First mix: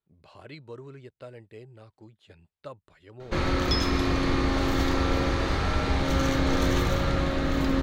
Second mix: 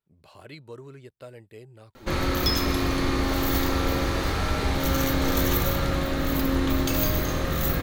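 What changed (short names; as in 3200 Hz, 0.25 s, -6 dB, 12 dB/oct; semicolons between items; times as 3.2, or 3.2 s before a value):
background: entry -1.25 s; master: remove air absorption 69 m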